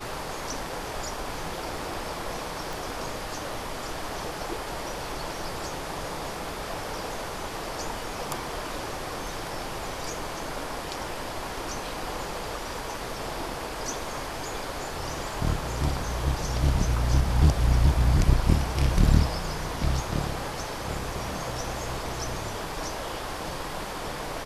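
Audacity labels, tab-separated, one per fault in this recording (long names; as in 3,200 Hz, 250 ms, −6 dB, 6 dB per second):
2.730000	2.730000	click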